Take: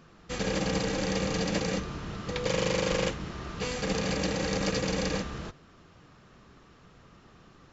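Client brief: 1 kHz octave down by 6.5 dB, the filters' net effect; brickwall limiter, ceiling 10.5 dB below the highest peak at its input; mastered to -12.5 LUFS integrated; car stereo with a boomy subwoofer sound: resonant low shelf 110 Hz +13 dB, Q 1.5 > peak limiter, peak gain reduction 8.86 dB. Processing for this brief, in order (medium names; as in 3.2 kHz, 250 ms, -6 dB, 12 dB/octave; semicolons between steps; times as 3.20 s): peaking EQ 1 kHz -8.5 dB; peak limiter -27 dBFS; resonant low shelf 110 Hz +13 dB, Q 1.5; trim +23.5 dB; peak limiter -2.5 dBFS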